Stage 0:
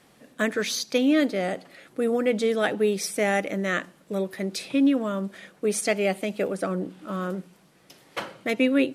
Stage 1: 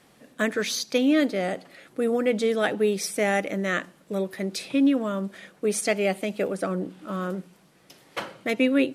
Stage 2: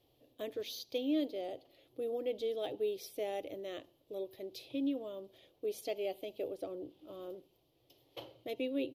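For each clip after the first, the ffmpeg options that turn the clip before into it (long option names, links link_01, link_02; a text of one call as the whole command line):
ffmpeg -i in.wav -af anull out.wav
ffmpeg -i in.wav -af "firequalizer=gain_entry='entry(120,0);entry(180,-27);entry(300,-5);entry(690,-8);entry(1500,-28);entry(3100,-5);entry(8500,-24);entry(13000,-1)':delay=0.05:min_phase=1,volume=-5.5dB" out.wav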